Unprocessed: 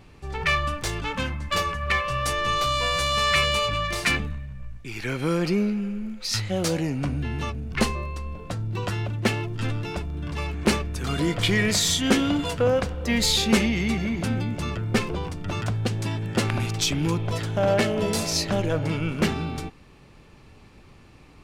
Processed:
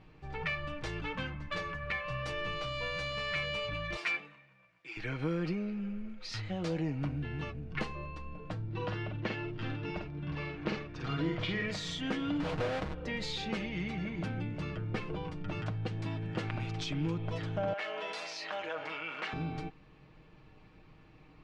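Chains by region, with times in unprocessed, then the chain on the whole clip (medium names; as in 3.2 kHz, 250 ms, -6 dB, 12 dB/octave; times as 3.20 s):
3.96–4.97 s: high-pass 560 Hz + comb 6 ms, depth 55%
8.62–11.66 s: low-pass 6.1 kHz 24 dB/octave + doubling 49 ms -4 dB
12.40–12.94 s: square wave that keeps the level + compression 3:1, threshold -22 dBFS + loudspeaker Doppler distortion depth 0.56 ms
17.73–19.33 s: high-pass 1 kHz + treble shelf 5.1 kHz -8.5 dB + level flattener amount 50%
whole clip: compression 2.5:1, threshold -25 dBFS; low-pass 3.4 kHz 12 dB/octave; comb 6.4 ms, depth 52%; trim -8 dB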